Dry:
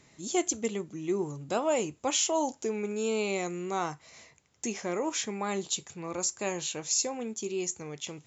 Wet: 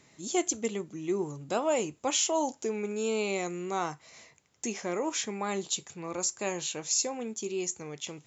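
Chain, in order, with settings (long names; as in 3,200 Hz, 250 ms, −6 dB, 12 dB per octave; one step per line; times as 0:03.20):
low-shelf EQ 62 Hz −10.5 dB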